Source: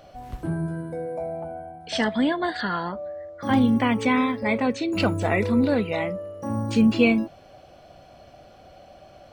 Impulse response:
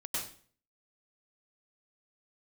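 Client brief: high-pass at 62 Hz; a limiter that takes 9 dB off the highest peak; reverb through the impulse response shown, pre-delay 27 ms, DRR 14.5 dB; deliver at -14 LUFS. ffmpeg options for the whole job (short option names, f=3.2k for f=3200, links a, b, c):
-filter_complex "[0:a]highpass=62,alimiter=limit=-15.5dB:level=0:latency=1,asplit=2[a][b];[1:a]atrim=start_sample=2205,adelay=27[c];[b][c]afir=irnorm=-1:irlink=0,volume=-17.5dB[d];[a][d]amix=inputs=2:normalize=0,volume=12.5dB"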